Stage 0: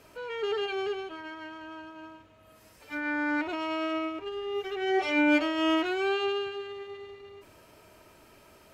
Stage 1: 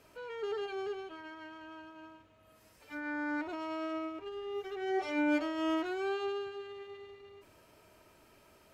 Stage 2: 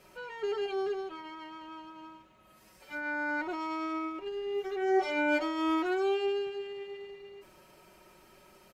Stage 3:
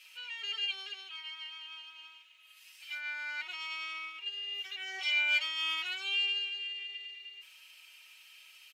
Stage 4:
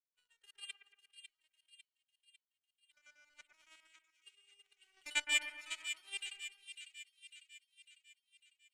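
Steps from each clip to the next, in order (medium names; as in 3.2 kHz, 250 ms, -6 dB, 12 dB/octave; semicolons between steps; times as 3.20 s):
dynamic bell 2.7 kHz, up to -7 dB, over -48 dBFS, Q 1.5; trim -6 dB
comb 5.4 ms, depth 73%; trim +2 dB
resonant high-pass 2.8 kHz, resonance Q 3.9; trim +2.5 dB
random holes in the spectrogram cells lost 33%; power-law waveshaper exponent 3; two-band feedback delay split 2.1 kHz, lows 116 ms, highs 550 ms, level -8 dB; trim +4 dB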